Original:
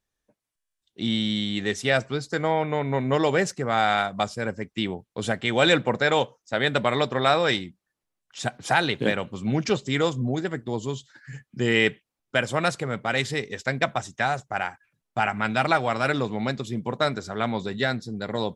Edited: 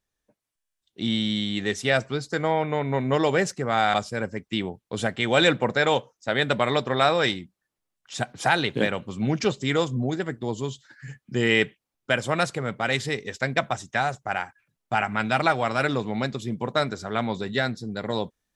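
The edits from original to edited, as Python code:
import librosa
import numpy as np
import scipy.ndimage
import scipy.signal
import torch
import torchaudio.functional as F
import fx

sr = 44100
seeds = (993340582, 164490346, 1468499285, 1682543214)

y = fx.edit(x, sr, fx.cut(start_s=3.94, length_s=0.25), tone=tone)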